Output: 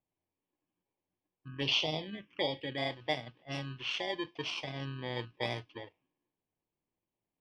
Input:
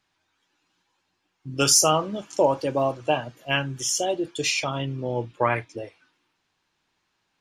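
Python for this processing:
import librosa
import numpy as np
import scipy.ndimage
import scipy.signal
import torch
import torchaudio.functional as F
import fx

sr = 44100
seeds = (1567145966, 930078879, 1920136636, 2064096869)

y = fx.bit_reversed(x, sr, seeds[0], block=32)
y = fx.env_lowpass(y, sr, base_hz=1400.0, full_db=-18.5)
y = fx.env_phaser(y, sr, low_hz=580.0, high_hz=1700.0, full_db=-17.0, at=(1.48, 2.78))
y = fx.ladder_lowpass(y, sr, hz=3700.0, resonance_pct=55)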